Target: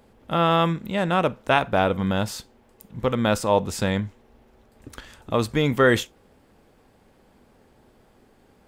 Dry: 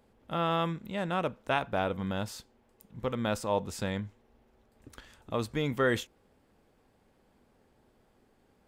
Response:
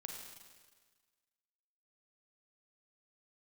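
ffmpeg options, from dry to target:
-filter_complex "[0:a]asplit=2[s0][s1];[1:a]atrim=start_sample=2205,atrim=end_sample=3528,asetrate=48510,aresample=44100[s2];[s1][s2]afir=irnorm=-1:irlink=0,volume=0.251[s3];[s0][s3]amix=inputs=2:normalize=0,volume=2.66"

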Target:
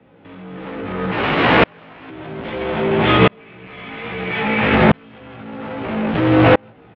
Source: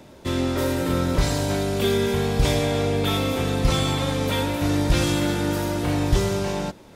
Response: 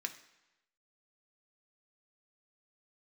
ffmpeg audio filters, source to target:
-filter_complex "[0:a]asettb=1/sr,asplit=3[s0][s1][s2];[s0]atrim=end=3.394[s3];[s1]atrim=start=3.39:end=4.75,asetpts=PTS-STARTPTS,afade=t=in:d=0.004:c=qsin,afade=t=out:st=1.356:d=0.004:c=qsin,equalizer=f=2300:t=o:w=0.6:g=12.5[s4];[s2]atrim=start=4.746[s5];[s3][s4]acrossfade=d=0.004:c1=hsin:c2=qsin[s6];[s6][s5]acrossfade=d=0.004:c1=qsin:c2=hsin,asplit=2[s7][s8];[s8]acompressor=threshold=0.0158:ratio=6,volume=1.41[s9];[s7][s9]amix=inputs=2:normalize=0,volume=17.8,asoftclip=hard,volume=0.0562,asplit=6[s10][s11][s12][s13][s14][s15];[s11]adelay=163,afreqshift=-51,volume=0.224[s16];[s12]adelay=326,afreqshift=-102,volume=0.115[s17];[s13]adelay=489,afreqshift=-153,volume=0.0582[s18];[s14]adelay=652,afreqshift=-204,volume=0.0299[s19];[s15]adelay=815,afreqshift=-255,volume=0.0151[s20];[s10][s16][s17][s18][s19][s20]amix=inputs=6:normalize=0,asettb=1/sr,asplit=3[s21][s22][s23];[s21]atrim=end=1.114[s24];[s22]atrim=start=1.11:end=2.1,asetpts=PTS-STARTPTS,afade=t=in:d=0.004:c=qsin,afade=t=out:st=0.986:d=0.004:c=qsin,aeval=exprs='(mod(17.8*val(0)+1,2)-1)/17.8':c=same[s25];[s23]atrim=start=2.096[s26];[s24][s25]acrossfade=d=0.004:c1=hsin:c2=qsin[s27];[s27][s26]acrossfade=d=0.004:c1=qsin:c2=hsin,flanger=delay=15:depth=2.2:speed=1.9,highpass=f=190:t=q:w=0.5412,highpass=f=190:t=q:w=1.307,lowpass=f=3000:t=q:w=0.5176,lowpass=f=3000:t=q:w=0.7071,lowpass=f=3000:t=q:w=1.932,afreqshift=-76,alimiter=level_in=25.1:limit=0.891:release=50:level=0:latency=1,aeval=exprs='val(0)*pow(10,-37*if(lt(mod(-0.61*n/s,1),2*abs(-0.61)/1000),1-mod(-0.61*n/s,1)/(2*abs(-0.61)/1000),(mod(-0.61*n/s,1)-2*abs(-0.61)/1000)/(1-2*abs(-0.61)/1000))/20)':c=same"

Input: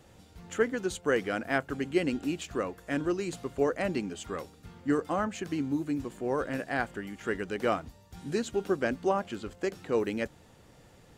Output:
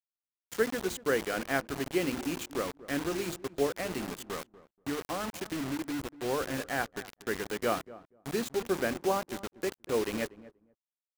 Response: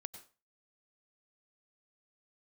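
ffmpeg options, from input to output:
-filter_complex "[0:a]bandreject=f=50:t=h:w=6,bandreject=f=100:t=h:w=6,bandreject=f=150:t=h:w=6,bandreject=f=200:t=h:w=6,bandreject=f=250:t=h:w=6,bandreject=f=300:t=h:w=6,bandreject=f=350:t=h:w=6,asettb=1/sr,asplit=3[s0][s1][s2];[s0]atrim=end=3.664[s3];[s1]atrim=start=3.66:end=6.12,asetpts=PTS-STARTPTS,afade=t=in:d=0.004:c=qsin,afade=t=out:st=2.456:d=0.004:c=qsin,acompressor=threshold=0.0316:ratio=4[s4];[s2]atrim=start=6.116[s5];[s3][s4]acrossfade=d=0.004:c1=hsin:c2=qsin[s6];[s6][s5]acrossfade=d=0.004:c1=qsin:c2=hsin,acrusher=bits=5:mix=0:aa=0.000001,asplit=2[s7][s8];[s8]adelay=240,lowpass=f=820:p=1,volume=0.158,asplit=2[s9][s10];[s10]adelay=240,lowpass=f=820:p=1,volume=0.17[s11];[s7][s9][s11]amix=inputs=3:normalize=0,volume=0.841"

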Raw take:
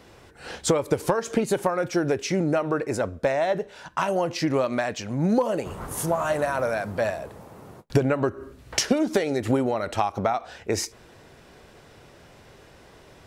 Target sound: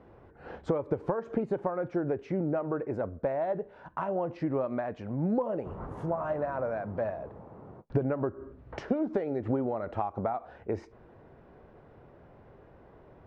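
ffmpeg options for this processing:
-filter_complex "[0:a]lowpass=1100,asplit=2[s0][s1];[s1]acompressor=threshold=0.0282:ratio=6,volume=0.891[s2];[s0][s2]amix=inputs=2:normalize=0,volume=0.376"

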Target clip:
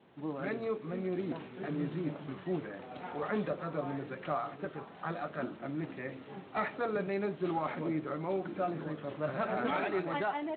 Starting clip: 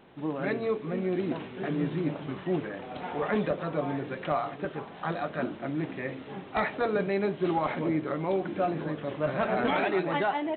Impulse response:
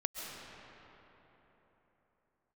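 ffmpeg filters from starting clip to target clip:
-af "adynamicequalizer=threshold=0.00282:dfrequency=1300:dqfactor=7.2:tfrequency=1300:tqfactor=7.2:attack=5:release=100:ratio=0.375:range=2.5:mode=boostabove:tftype=bell,volume=0.473" -ar 32000 -c:a libspeex -b:a 28k

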